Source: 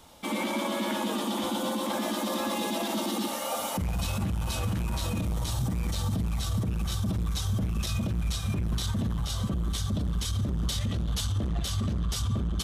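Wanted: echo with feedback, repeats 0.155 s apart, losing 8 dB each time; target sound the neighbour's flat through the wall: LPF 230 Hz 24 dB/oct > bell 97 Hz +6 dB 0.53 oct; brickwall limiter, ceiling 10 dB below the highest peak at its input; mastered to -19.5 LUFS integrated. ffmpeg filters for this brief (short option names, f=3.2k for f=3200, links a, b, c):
-af "alimiter=level_in=5.5dB:limit=-24dB:level=0:latency=1,volume=-5.5dB,lowpass=f=230:w=0.5412,lowpass=f=230:w=1.3066,equalizer=f=97:t=o:w=0.53:g=6,aecho=1:1:155|310|465|620|775:0.398|0.159|0.0637|0.0255|0.0102,volume=17.5dB"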